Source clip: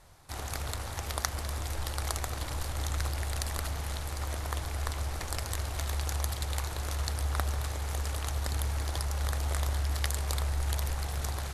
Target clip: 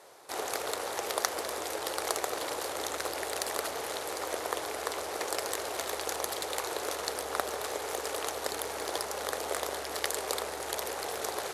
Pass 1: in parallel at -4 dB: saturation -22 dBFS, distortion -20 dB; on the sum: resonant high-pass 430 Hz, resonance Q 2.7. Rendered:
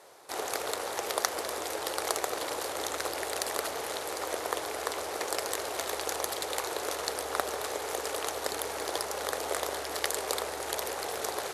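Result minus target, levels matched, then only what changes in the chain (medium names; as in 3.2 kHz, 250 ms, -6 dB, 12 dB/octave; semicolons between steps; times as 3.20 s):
saturation: distortion -7 dB
change: saturation -30 dBFS, distortion -13 dB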